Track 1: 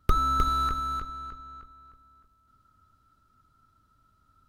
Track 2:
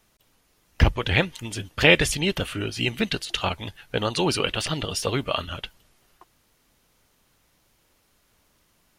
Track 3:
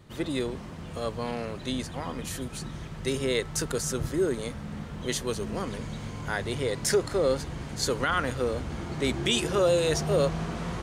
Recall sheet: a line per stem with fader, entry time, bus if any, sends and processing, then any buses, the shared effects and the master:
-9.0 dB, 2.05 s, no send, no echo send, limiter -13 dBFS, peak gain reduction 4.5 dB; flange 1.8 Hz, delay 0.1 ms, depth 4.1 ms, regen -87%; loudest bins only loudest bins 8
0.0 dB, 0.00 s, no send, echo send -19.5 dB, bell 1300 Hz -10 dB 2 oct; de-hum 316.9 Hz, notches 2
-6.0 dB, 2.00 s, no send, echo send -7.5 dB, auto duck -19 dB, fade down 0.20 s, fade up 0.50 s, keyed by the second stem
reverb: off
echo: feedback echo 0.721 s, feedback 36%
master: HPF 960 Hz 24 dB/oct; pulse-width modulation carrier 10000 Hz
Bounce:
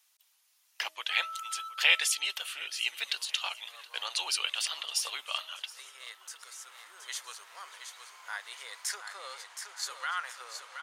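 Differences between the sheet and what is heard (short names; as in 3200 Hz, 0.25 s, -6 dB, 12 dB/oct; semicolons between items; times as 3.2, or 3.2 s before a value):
stem 1: entry 2.05 s -> 1.00 s; master: missing pulse-width modulation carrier 10000 Hz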